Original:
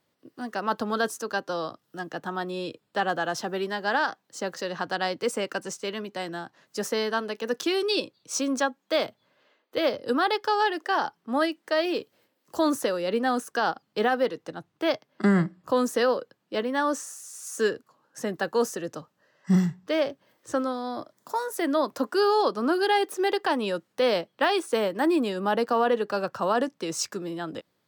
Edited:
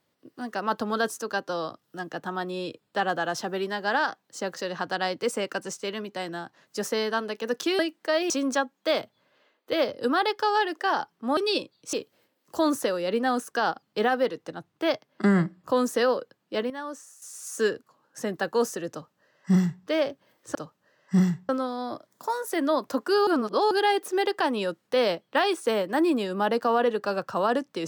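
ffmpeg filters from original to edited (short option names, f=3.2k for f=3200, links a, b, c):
-filter_complex "[0:a]asplit=11[a][b][c][d][e][f][g][h][i][j][k];[a]atrim=end=7.792[l];[b]atrim=start=11.418:end=11.932[m];[c]atrim=start=8.348:end=11.422[n];[d]atrim=start=7.788:end=8.352[o];[e]atrim=start=11.928:end=16.702[p];[f]atrim=start=16.698:end=17.222,asetpts=PTS-STARTPTS,volume=-10.5dB[q];[g]atrim=start=17.218:end=20.552[r];[h]atrim=start=18.908:end=19.852[s];[i]atrim=start=20.548:end=22.332[t];[j]atrim=start=22.328:end=22.772,asetpts=PTS-STARTPTS,areverse[u];[k]atrim=start=22.768[v];[l][m]acrossfade=d=0.004:c1=hsin:c2=hsin[w];[w][n]acrossfade=d=0.004:c1=hsin:c2=hsin[x];[x][o]acrossfade=d=0.004:c1=hsin:c2=hsin[y];[y][p]acrossfade=d=0.004:c1=hsin:c2=hsin[z];[z][q]acrossfade=d=0.004:c1=hsin:c2=hsin[aa];[aa][r]acrossfade=d=0.004:c1=hsin:c2=hsin[ab];[ab][s]acrossfade=d=0.004:c1=hsin:c2=hsin[ac];[ac][t]acrossfade=d=0.004:c1=hsin:c2=hsin[ad];[ad][u]acrossfade=d=0.004:c1=hsin:c2=hsin[ae];[ae][v]acrossfade=d=0.004:c1=hsin:c2=hsin"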